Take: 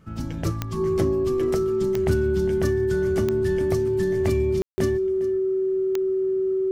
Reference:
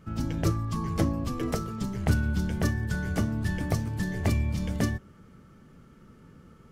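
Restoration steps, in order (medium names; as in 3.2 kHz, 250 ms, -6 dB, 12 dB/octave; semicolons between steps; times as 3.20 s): de-click; band-stop 380 Hz, Q 30; room tone fill 4.62–4.78 s; inverse comb 406 ms -17.5 dB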